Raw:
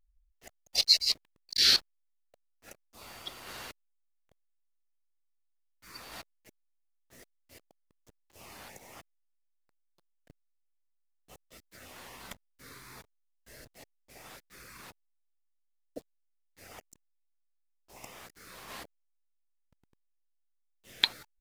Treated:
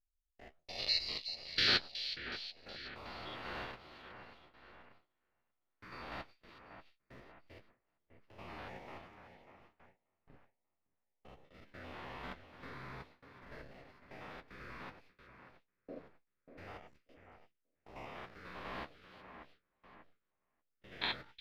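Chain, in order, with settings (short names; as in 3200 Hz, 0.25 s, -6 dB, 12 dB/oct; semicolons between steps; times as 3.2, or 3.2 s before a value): stepped spectrum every 0.1 s; air absorption 360 m; on a send: split-band echo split 2600 Hz, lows 0.588 s, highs 0.369 s, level -10 dB; on the sum: gate with hold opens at -57 dBFS; flange 1.2 Hz, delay 9.3 ms, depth 6.3 ms, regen -41%; gain +10 dB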